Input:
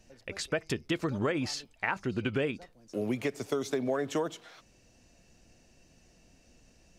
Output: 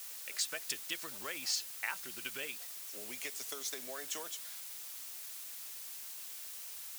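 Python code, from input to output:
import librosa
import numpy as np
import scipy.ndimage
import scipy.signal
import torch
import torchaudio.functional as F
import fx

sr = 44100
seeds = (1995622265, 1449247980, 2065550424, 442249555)

y = fx.dmg_noise_colour(x, sr, seeds[0], colour='pink', level_db=-48.0)
y = np.diff(y, prepend=0.0)
y = y * 10.0 ** (5.5 / 20.0)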